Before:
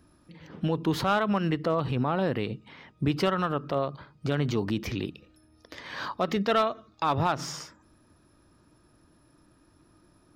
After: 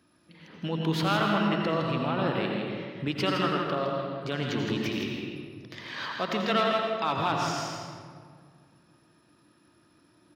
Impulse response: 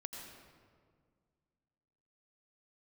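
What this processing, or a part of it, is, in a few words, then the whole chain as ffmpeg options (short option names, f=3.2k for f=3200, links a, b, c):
PA in a hall: -filter_complex "[0:a]highpass=130,equalizer=f=2.9k:t=o:w=1.7:g=7,aecho=1:1:162:0.473[a];[1:a]atrim=start_sample=2205[b];[a][b]afir=irnorm=-1:irlink=0"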